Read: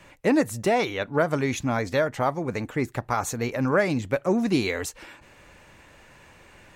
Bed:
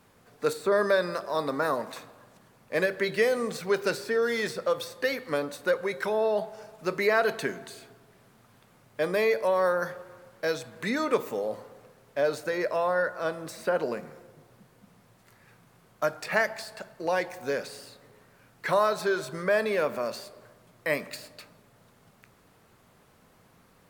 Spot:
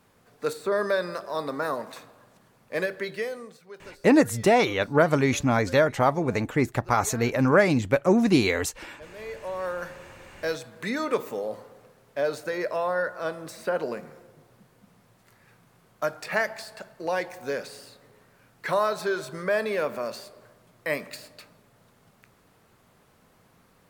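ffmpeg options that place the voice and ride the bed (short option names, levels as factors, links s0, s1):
-filter_complex "[0:a]adelay=3800,volume=1.41[s0];[1:a]volume=7.08,afade=t=out:st=2.8:d=0.79:silence=0.133352,afade=t=in:st=9.14:d=1.23:silence=0.11885[s1];[s0][s1]amix=inputs=2:normalize=0"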